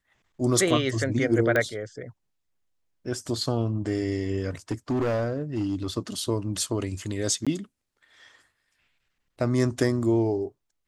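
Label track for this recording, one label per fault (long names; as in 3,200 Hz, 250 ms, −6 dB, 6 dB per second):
1.560000	1.560000	click −12 dBFS
4.710000	5.980000	clipping −22 dBFS
7.450000	7.470000	drop-out 16 ms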